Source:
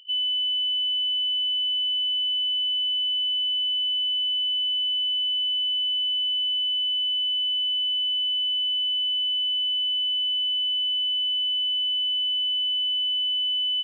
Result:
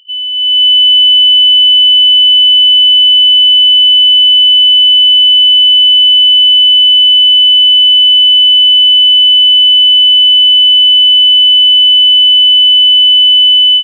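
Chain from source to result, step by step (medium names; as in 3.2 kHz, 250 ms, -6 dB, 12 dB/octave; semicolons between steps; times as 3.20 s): level rider gain up to 14 dB; trim +6 dB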